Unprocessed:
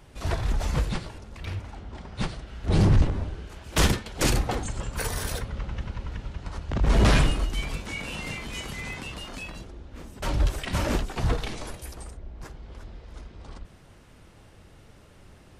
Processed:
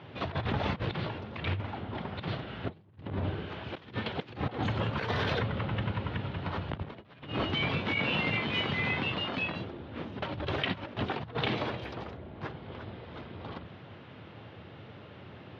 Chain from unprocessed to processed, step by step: elliptic band-pass 100–3500 Hz, stop band 40 dB; negative-ratio compressor -35 dBFS, ratio -0.5; gain +2 dB

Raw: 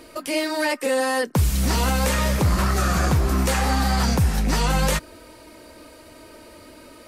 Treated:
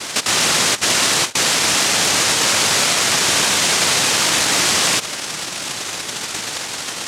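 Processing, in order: fixed phaser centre 760 Hz, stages 4; noise vocoder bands 1; maximiser +29.5 dB; gain -6 dB

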